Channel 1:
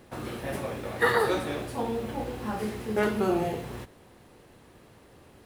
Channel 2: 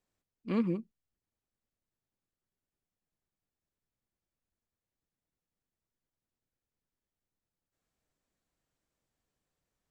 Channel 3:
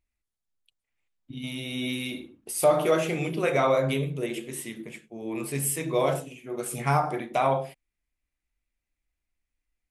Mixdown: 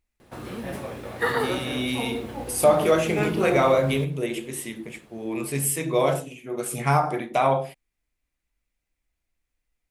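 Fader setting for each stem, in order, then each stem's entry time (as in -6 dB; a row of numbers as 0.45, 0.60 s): -1.0, -8.0, +3.0 dB; 0.20, 0.00, 0.00 s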